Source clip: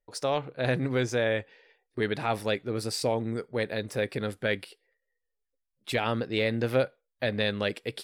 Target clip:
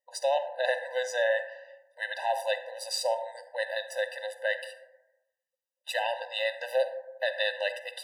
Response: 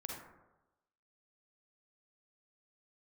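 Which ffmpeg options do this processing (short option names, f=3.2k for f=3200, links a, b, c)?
-filter_complex "[0:a]asubboost=boost=9.5:cutoff=110,asplit=2[a][b];[1:a]atrim=start_sample=2205[c];[b][c]afir=irnorm=-1:irlink=0,volume=-3dB[d];[a][d]amix=inputs=2:normalize=0,afftfilt=real='re*eq(mod(floor(b*sr/1024/510),2),1)':imag='im*eq(mod(floor(b*sr/1024/510),2),1)':win_size=1024:overlap=0.75"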